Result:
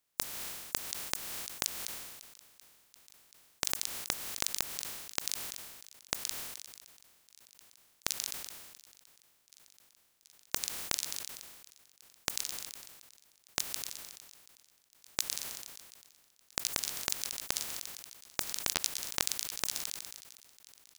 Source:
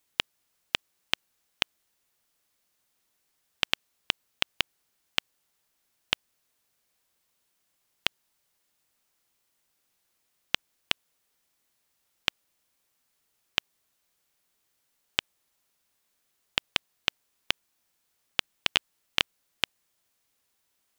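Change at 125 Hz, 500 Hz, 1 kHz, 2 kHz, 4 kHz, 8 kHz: -2.5, -2.5, -3.5, -9.0, -7.5, +12.0 dB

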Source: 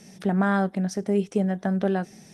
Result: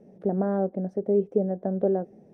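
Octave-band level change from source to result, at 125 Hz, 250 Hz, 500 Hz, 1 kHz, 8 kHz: -4.5 dB, -4.0 dB, +2.5 dB, -6.5 dB, under -30 dB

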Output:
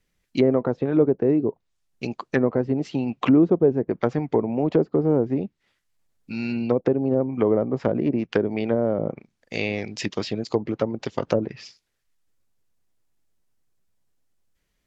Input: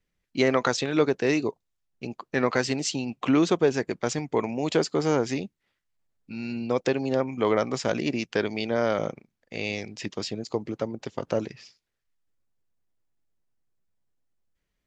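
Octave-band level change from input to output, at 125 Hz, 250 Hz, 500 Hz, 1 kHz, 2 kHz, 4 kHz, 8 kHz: +5.5 dB, +5.5 dB, +3.5 dB, -1.5 dB, -3.5 dB, -5.0 dB, under -10 dB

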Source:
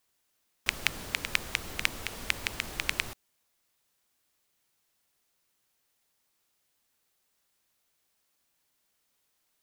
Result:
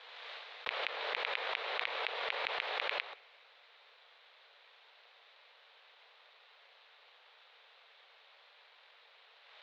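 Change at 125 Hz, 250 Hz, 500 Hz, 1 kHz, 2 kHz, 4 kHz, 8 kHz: under -30 dB, -17.0 dB, +5.0 dB, +4.0 dB, -4.0 dB, -4.0 dB, under -25 dB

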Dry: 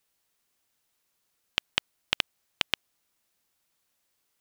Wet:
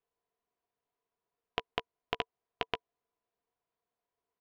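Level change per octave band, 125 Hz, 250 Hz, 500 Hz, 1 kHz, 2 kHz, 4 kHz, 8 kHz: -2.0, -1.0, +5.5, +2.0, -8.5, -11.5, -22.0 dB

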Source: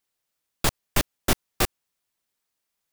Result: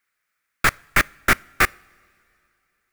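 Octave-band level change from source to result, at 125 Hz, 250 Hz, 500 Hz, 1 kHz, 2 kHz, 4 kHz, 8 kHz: 0.0, 0.0, 0.0, +8.0, +13.5, +0.5, 0.0 dB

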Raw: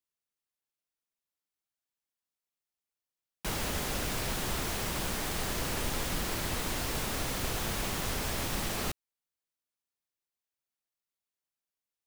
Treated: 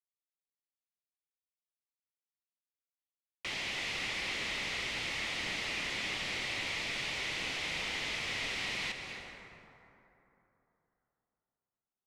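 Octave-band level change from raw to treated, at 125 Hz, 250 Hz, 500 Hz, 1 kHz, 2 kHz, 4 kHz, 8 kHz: -13.0, -10.0, -8.0, -6.5, +4.0, +2.0, -9.0 dB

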